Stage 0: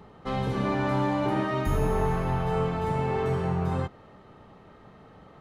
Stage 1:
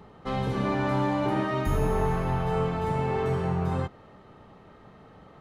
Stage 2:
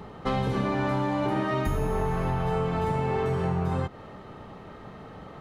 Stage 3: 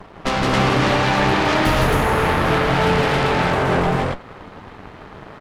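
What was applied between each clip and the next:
no audible change
compression, threshold -31 dBFS, peak gain reduction 10 dB; trim +7.5 dB
Chebyshev shaper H 7 -22 dB, 8 -9 dB, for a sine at -15.5 dBFS; flange 0.44 Hz, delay 2 ms, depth 10 ms, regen -81%; loudspeakers at several distances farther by 56 m -2 dB, 93 m -1 dB; trim +8 dB

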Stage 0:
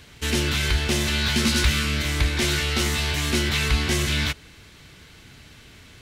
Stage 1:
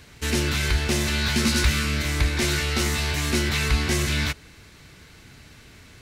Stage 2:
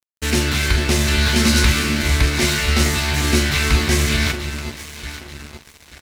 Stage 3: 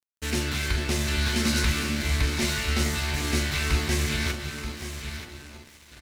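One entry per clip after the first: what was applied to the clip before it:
peaking EQ 3.2 kHz -5 dB 0.42 oct
doubling 44 ms -10.5 dB; echo whose repeats swap between lows and highs 440 ms, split 960 Hz, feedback 68%, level -7 dB; crossover distortion -37.5 dBFS; trim +6 dB
delay 931 ms -10.5 dB; trim -9 dB

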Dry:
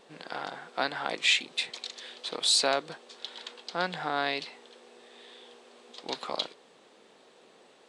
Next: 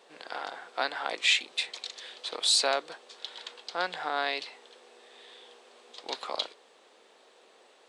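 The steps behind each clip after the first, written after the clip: high-pass 400 Hz 12 dB/octave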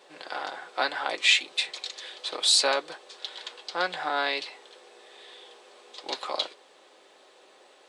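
comb of notches 230 Hz; trim +4.5 dB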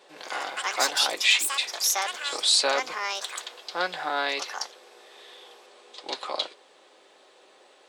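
ever faster or slower copies 90 ms, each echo +6 st, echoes 2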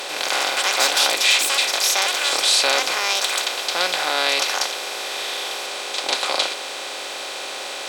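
spectral levelling over time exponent 0.4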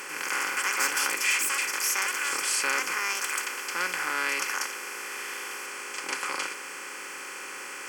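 static phaser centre 1.6 kHz, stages 4; trim -3 dB

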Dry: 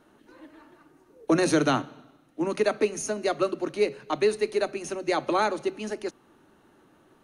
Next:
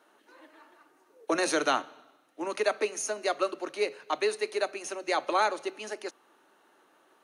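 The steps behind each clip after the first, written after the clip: high-pass 530 Hz 12 dB/octave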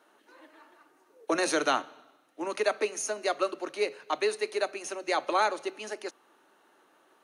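no audible change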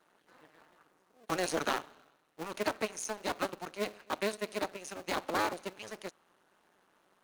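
cycle switcher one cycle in 2, muted; vibrato 11 Hz 43 cents; trim -3 dB

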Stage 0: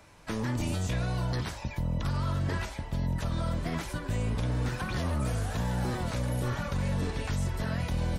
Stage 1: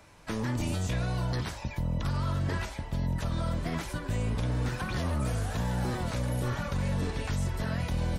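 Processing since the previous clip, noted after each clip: no audible change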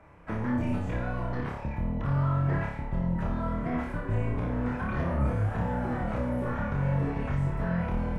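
FFT filter 1.3 kHz 0 dB, 2.3 kHz -5 dB, 4.1 kHz -22 dB; on a send: flutter echo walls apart 4.9 m, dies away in 0.56 s

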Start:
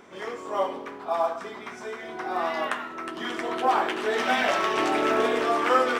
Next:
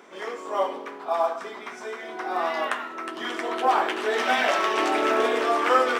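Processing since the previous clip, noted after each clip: high-pass 280 Hz 12 dB/octave; trim +1.5 dB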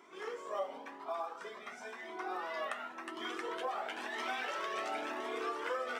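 compression 6:1, threshold -25 dBFS, peak gain reduction 10.5 dB; Shepard-style flanger rising 0.95 Hz; trim -5 dB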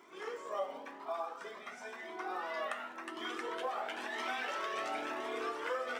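crackle 63 per s -54 dBFS; on a send at -12 dB: reverberation RT60 0.90 s, pre-delay 3 ms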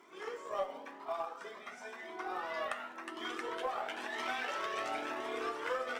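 Chebyshev shaper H 4 -35 dB, 7 -29 dB, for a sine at -22 dBFS; trim +1.5 dB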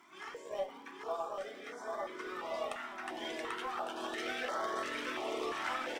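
on a send: bouncing-ball echo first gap 790 ms, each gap 0.8×, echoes 5; on the sum: step-sequenced notch 2.9 Hz 470–2600 Hz; trim +1 dB

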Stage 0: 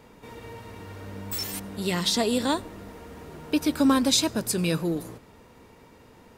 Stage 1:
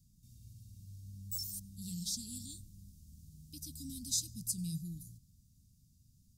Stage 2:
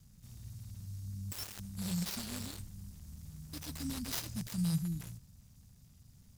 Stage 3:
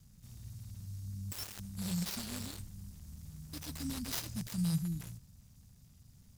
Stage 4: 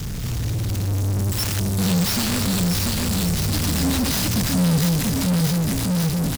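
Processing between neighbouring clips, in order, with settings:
inverse Chebyshev band-stop 600–1500 Hz, stop band 80 dB; trim -7 dB
dead-time distortion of 0.069 ms; trim +7 dB
no audible change
bouncing-ball echo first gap 690 ms, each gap 0.9×, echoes 5; power-law waveshaper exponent 0.35; trim +6 dB

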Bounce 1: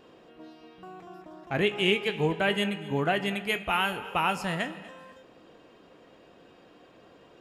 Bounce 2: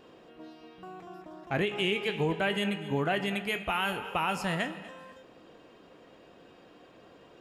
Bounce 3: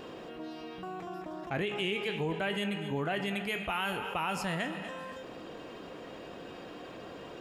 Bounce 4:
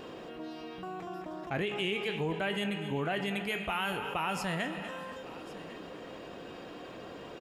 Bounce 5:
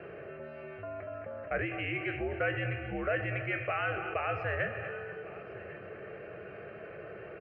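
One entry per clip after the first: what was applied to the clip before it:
peak limiter -19 dBFS, peak gain reduction 7.5 dB
level flattener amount 50%; trim -5 dB
delay 1100 ms -18 dB
mistuned SSB -81 Hz 190–3200 Hz; static phaser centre 950 Hz, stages 6; trim +4 dB

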